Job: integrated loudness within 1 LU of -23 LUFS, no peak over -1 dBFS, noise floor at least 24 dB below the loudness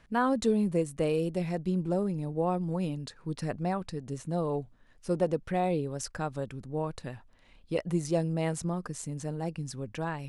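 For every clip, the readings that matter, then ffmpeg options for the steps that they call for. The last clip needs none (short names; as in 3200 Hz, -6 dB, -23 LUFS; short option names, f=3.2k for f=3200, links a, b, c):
loudness -32.0 LUFS; peak -14.5 dBFS; loudness target -23.0 LUFS
-> -af "volume=9dB"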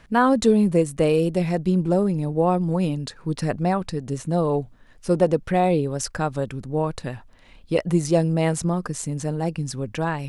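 loudness -23.0 LUFS; peak -5.5 dBFS; noise floor -49 dBFS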